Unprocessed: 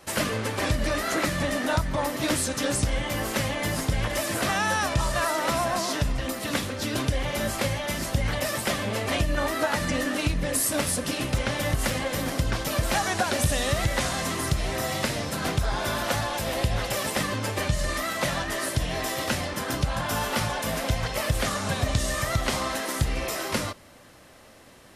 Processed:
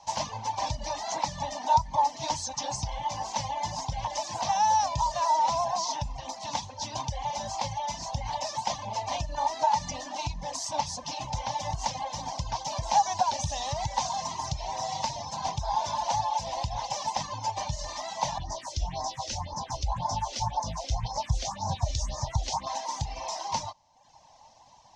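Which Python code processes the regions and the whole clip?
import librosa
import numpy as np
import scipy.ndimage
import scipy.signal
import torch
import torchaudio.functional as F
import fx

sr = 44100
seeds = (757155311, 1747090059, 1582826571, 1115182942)

y = fx.chain(x, sr, fx.low_shelf(hz=160.0, db=10.0),
    fx.phaser_stages(stages=4, low_hz=150.0, high_hz=2900.0, hz=1.9, feedback_pct=15), at=(18.38, 22.67))
y = fx.curve_eq(y, sr, hz=(140.0, 430.0, 920.0, 1300.0, 6200.0, 11000.0), db=(0, -18, 10, -23, 10, -28))
y = fx.dereverb_blind(y, sr, rt60_s=0.84)
y = fx.peak_eq(y, sr, hz=1200.0, db=11.5, octaves=2.6)
y = F.gain(torch.from_numpy(y), -8.0).numpy()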